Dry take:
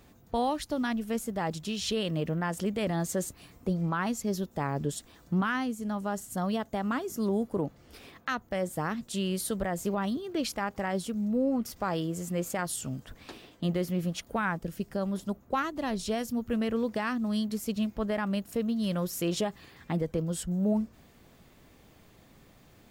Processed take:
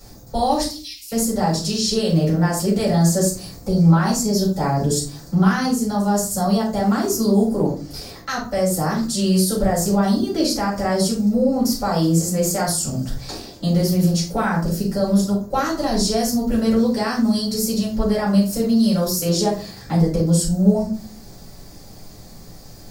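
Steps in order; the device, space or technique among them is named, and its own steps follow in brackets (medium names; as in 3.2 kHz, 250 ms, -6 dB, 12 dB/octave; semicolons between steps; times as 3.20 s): over-bright horn tweeter (resonant high shelf 3.8 kHz +8 dB, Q 3; peak limiter -22.5 dBFS, peak gain reduction 10.5 dB); 0.68–1.12 s: steep high-pass 2.2 kHz 96 dB/octave; simulated room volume 250 m³, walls furnished, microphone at 6.9 m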